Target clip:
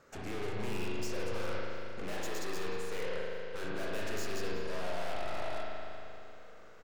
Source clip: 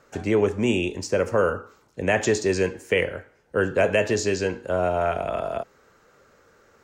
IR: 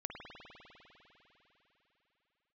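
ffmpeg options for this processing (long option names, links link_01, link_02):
-filter_complex "[0:a]asettb=1/sr,asplit=3[link_01][link_02][link_03];[link_01]atrim=end=2.034[link_04];[link_02]atrim=start=2.03:end=3.61,asetpts=PTS-STARTPTS,afade=type=in:duration=0.004:curve=qsin,afade=type=out:start_time=1.576:duration=0.004:curve=qsin,highpass=170[link_05];[link_03]atrim=start=3.606[link_06];[link_04][link_05]acrossfade=duration=0.004:curve1=hsin:curve2=qsin[link_07];[link_07][link_06]acrossfade=duration=0.004:curve1=qsin:curve2=hsin,aeval=exprs='(tanh(100*val(0)+0.65)-tanh(0.65))/100':channel_layout=same,aecho=1:1:373:0.112[link_08];[1:a]atrim=start_sample=2205,asetrate=57330,aresample=44100[link_09];[link_08][link_09]afir=irnorm=-1:irlink=0,volume=5dB"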